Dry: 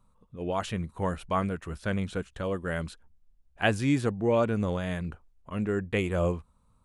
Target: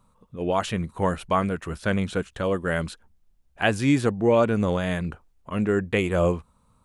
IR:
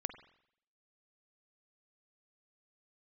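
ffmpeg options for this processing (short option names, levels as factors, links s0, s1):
-filter_complex "[0:a]lowshelf=f=81:g=-8,asplit=2[s0][s1];[s1]alimiter=limit=0.126:level=0:latency=1:release=298,volume=1.19[s2];[s0][s2]amix=inputs=2:normalize=0"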